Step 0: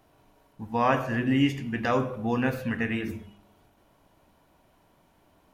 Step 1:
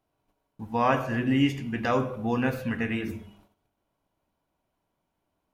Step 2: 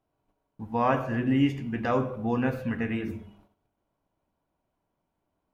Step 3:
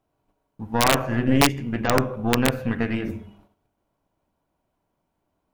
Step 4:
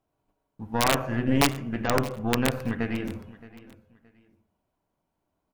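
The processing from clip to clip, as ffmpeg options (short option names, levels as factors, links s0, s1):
-af "bandreject=f=1800:w=19,agate=range=0.158:threshold=0.00141:ratio=16:detection=peak"
-af "highshelf=f=2400:g=-9"
-af "aeval=exprs='0.299*(cos(1*acos(clip(val(0)/0.299,-1,1)))-cos(1*PI/2))+0.0668*(cos(4*acos(clip(val(0)/0.299,-1,1)))-cos(4*PI/2))':c=same,aeval=exprs='(mod(3.35*val(0)+1,2)-1)/3.35':c=same,volume=1.58"
-af "aecho=1:1:621|1242:0.112|0.0303,volume=0.631"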